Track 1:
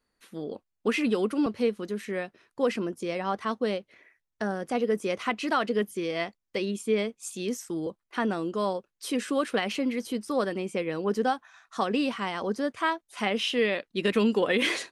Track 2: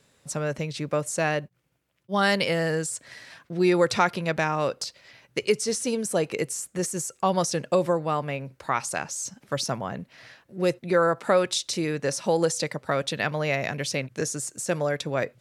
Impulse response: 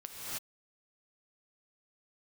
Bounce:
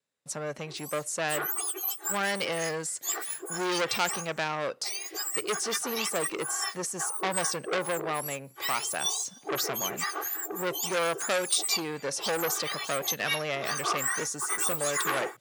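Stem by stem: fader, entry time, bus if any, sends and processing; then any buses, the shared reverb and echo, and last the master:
-1.5 dB, 0.45 s, send -24 dB, spectrum inverted on a logarithmic axis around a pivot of 1.9 kHz; comb 2.6 ms, depth 91%
-2.0 dB, 0.00 s, no send, gate with hold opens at -44 dBFS; high-pass 320 Hz 6 dB/octave; vibrato 0.39 Hz 5.4 cents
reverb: on, pre-delay 3 ms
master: transformer saturation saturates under 3.3 kHz

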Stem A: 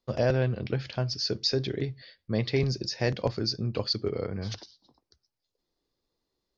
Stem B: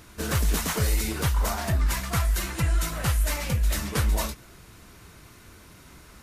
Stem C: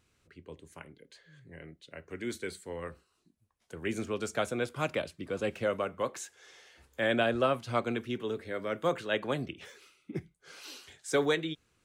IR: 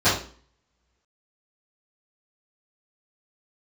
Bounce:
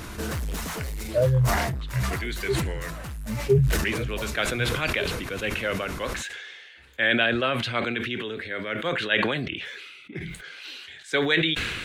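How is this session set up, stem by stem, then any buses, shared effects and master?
+1.0 dB, 0.95 s, no send, high-pass 54 Hz 6 dB/octave; spectral contrast expander 4:1
+1.5 dB, 0.00 s, no send, saturation -26 dBFS, distortion -10 dB; level flattener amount 50%; auto duck -8 dB, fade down 1.50 s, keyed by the third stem
-0.5 dB, 0.00 s, no send, high-order bell 2.5 kHz +12 dB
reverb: none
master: treble shelf 4.1 kHz -4.5 dB; decay stretcher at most 32 dB/s

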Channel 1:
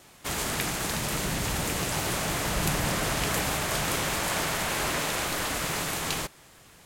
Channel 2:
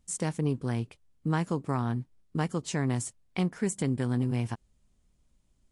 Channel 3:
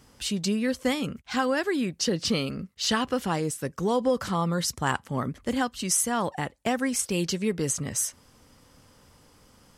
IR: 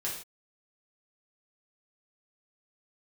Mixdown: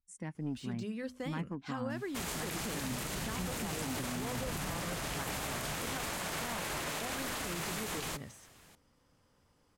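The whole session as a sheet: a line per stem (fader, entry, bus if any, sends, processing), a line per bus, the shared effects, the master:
-6.0 dB, 1.90 s, no send, none
-11.5 dB, 0.00 s, no send, expander on every frequency bin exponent 1.5; graphic EQ 250/500/1000/2000/4000/8000 Hz +11/-4/+5/+10/-10/-4 dB; saturation -17.5 dBFS, distortion -18 dB
-12.5 dB, 0.35 s, no send, de-esser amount 70%; treble shelf 4 kHz -6 dB; hum notches 50/100/150/200/250 Hz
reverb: none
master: peak limiter -28 dBFS, peak gain reduction 11 dB

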